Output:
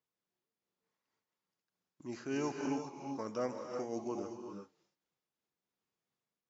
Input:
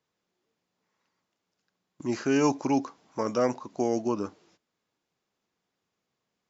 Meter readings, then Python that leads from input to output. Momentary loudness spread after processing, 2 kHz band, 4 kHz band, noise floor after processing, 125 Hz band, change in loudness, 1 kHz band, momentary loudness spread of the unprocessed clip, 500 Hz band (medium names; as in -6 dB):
11 LU, -10.5 dB, -10.5 dB, under -85 dBFS, -11.5 dB, -11.5 dB, -11.5 dB, 11 LU, -11.0 dB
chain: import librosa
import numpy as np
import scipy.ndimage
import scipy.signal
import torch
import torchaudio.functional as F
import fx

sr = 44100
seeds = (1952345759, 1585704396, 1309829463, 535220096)

y = fx.rev_gated(x, sr, seeds[0], gate_ms=410, shape='rising', drr_db=2.5)
y = fx.am_noise(y, sr, seeds[1], hz=5.7, depth_pct=65)
y = y * librosa.db_to_amplitude(-8.5)